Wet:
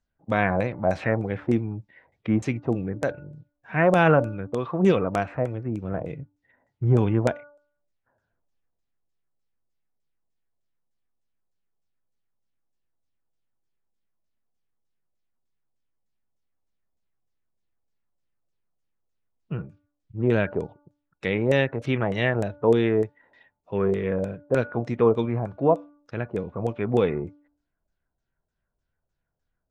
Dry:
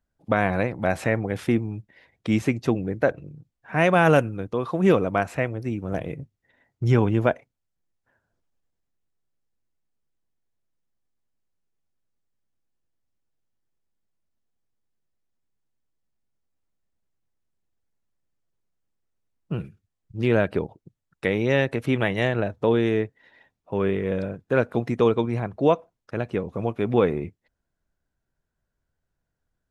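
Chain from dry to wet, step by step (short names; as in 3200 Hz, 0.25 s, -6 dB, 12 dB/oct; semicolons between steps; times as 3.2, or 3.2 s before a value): de-hum 292 Hz, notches 5; LFO low-pass saw down 3.3 Hz 550–8000 Hz; harmonic-percussive split percussive -6 dB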